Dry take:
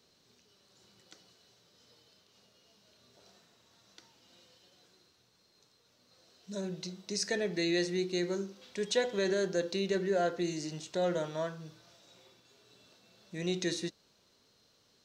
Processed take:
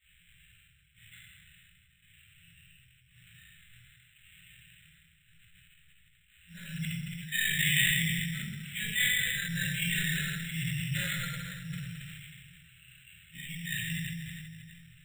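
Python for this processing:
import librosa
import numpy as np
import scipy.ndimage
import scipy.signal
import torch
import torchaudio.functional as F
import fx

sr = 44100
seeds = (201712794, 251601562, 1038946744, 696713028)

p1 = fx.phase_scramble(x, sr, seeds[0], window_ms=50)
p2 = scipy.signal.sosfilt(scipy.signal.cheby2(4, 40, [230.0, 1100.0], 'bandstop', fs=sr, output='sos'), p1)
p3 = fx.high_shelf(p2, sr, hz=2600.0, db=10.0)
p4 = fx.rider(p3, sr, range_db=3, speed_s=2.0)
p5 = p3 + (p4 * 10.0 ** (2.5 / 20.0))
p6 = fx.step_gate(p5, sr, bpm=127, pattern='xxxxx...x', floor_db=-12.0, edge_ms=4.5)
p7 = fx.chorus_voices(p6, sr, voices=4, hz=1.3, base_ms=15, depth_ms=3.0, mix_pct=60)
p8 = p7 + fx.echo_feedback(p7, sr, ms=162, feedback_pct=58, wet_db=-14.0, dry=0)
p9 = fx.room_shoebox(p8, sr, seeds[1], volume_m3=420.0, walls='mixed', distance_m=2.7)
p10 = np.repeat(scipy.signal.resample_poly(p9, 1, 8), 8)[:len(p9)]
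p11 = fx.sustainer(p10, sr, db_per_s=22.0)
y = p11 * 10.0 ** (1.5 / 20.0)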